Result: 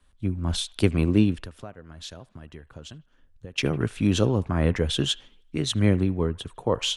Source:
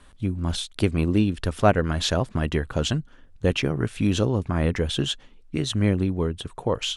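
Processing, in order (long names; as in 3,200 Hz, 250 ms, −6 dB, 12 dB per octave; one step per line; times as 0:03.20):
0:01.34–0:03.58: downward compressor 8 to 1, threshold −34 dBFS, peak gain reduction 21.5 dB
delay with a band-pass on its return 77 ms, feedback 47%, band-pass 1,400 Hz, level −19 dB
multiband upward and downward expander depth 40%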